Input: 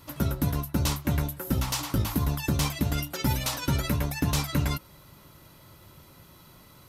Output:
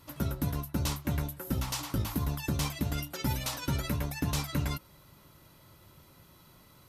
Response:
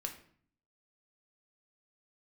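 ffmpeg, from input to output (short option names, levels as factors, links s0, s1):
-af "aresample=32000,aresample=44100,volume=0.562"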